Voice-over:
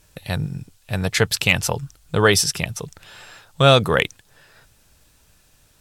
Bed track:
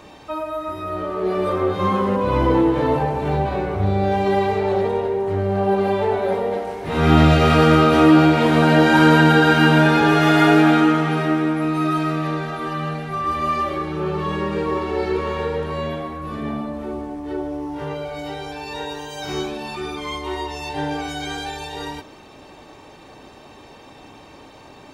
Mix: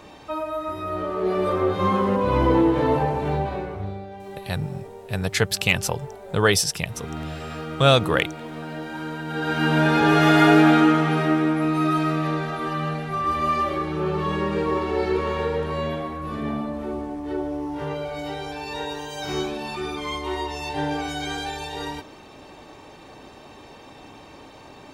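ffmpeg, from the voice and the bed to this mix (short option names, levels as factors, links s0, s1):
-filter_complex "[0:a]adelay=4200,volume=0.708[s0];[1:a]volume=7.08,afade=t=out:st=3.13:d=0.94:silence=0.125893,afade=t=in:st=9.26:d=0.94:silence=0.11885[s1];[s0][s1]amix=inputs=2:normalize=0"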